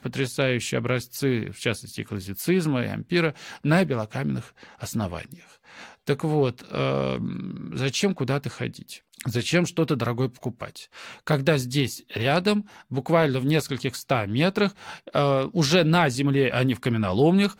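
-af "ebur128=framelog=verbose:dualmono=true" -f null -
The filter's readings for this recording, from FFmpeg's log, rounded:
Integrated loudness:
  I:         -21.7 LUFS
  Threshold: -32.1 LUFS
Loudness range:
  LRA:         5.1 LU
  Threshold: -42.5 LUFS
  LRA low:   -24.9 LUFS
  LRA high:  -19.8 LUFS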